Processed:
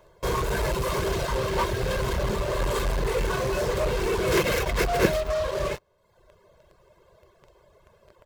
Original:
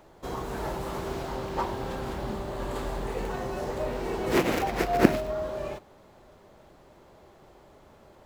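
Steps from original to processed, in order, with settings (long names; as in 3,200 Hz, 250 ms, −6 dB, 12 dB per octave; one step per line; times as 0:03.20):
reverb reduction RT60 1.1 s
dynamic equaliser 740 Hz, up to −7 dB, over −44 dBFS, Q 1.8
comb filter 1.9 ms, depth 85%
in parallel at −8.5 dB: fuzz pedal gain 40 dB, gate −44 dBFS
on the sum: level −3.5 dB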